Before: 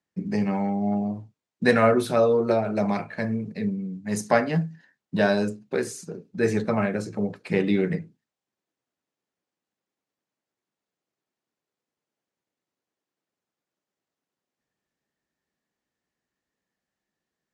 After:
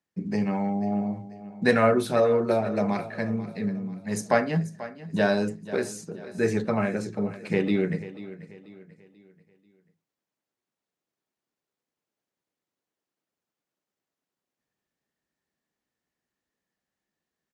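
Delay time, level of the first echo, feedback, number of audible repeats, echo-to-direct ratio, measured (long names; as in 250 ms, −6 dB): 488 ms, −15.5 dB, 40%, 3, −14.5 dB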